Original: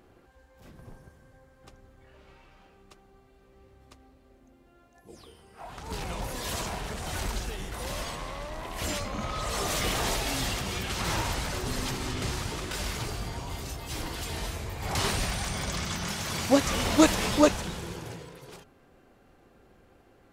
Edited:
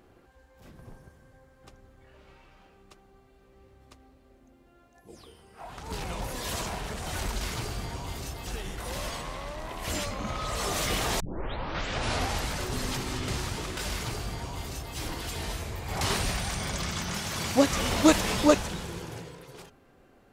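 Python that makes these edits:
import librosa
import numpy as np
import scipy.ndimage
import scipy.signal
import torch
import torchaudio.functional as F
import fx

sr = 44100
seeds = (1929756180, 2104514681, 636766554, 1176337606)

y = fx.edit(x, sr, fx.tape_start(start_s=10.14, length_s=1.28),
    fx.duplicate(start_s=12.84, length_s=1.06, to_s=7.41), tone=tone)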